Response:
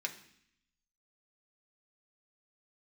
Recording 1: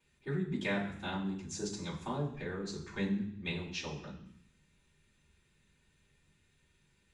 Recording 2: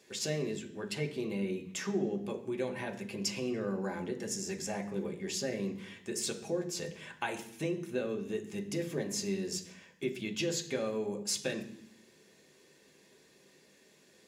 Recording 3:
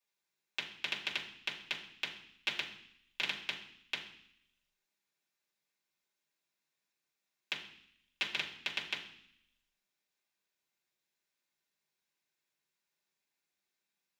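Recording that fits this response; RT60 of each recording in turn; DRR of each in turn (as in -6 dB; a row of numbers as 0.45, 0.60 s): 2; 0.65, 0.65, 0.65 s; -16.5, 1.5, -7.0 dB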